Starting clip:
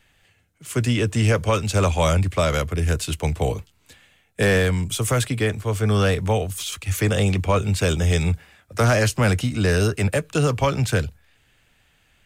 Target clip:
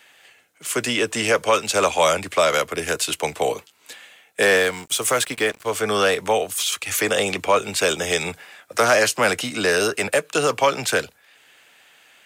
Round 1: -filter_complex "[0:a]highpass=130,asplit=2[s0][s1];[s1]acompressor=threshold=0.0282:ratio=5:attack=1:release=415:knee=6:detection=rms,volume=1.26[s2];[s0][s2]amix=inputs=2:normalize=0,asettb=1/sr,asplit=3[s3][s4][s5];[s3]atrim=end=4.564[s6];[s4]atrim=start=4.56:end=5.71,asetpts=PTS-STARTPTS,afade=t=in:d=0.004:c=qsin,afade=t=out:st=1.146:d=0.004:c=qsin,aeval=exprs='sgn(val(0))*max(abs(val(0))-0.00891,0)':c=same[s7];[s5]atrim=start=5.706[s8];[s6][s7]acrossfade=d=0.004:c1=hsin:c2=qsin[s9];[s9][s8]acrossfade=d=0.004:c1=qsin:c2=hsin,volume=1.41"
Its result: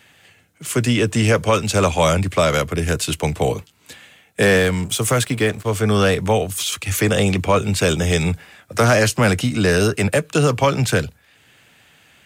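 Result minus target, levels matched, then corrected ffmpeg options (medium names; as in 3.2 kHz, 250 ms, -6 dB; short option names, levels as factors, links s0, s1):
125 Hz band +15.5 dB
-filter_complex "[0:a]highpass=440,asplit=2[s0][s1];[s1]acompressor=threshold=0.0282:ratio=5:attack=1:release=415:knee=6:detection=rms,volume=1.26[s2];[s0][s2]amix=inputs=2:normalize=0,asettb=1/sr,asplit=3[s3][s4][s5];[s3]atrim=end=4.564[s6];[s4]atrim=start=4.56:end=5.71,asetpts=PTS-STARTPTS,afade=t=in:d=0.004:c=qsin,afade=t=out:st=1.146:d=0.004:c=qsin,aeval=exprs='sgn(val(0))*max(abs(val(0))-0.00891,0)':c=same[s7];[s5]atrim=start=5.706[s8];[s6][s7]acrossfade=d=0.004:c1=hsin:c2=qsin[s9];[s9][s8]acrossfade=d=0.004:c1=qsin:c2=hsin,volume=1.41"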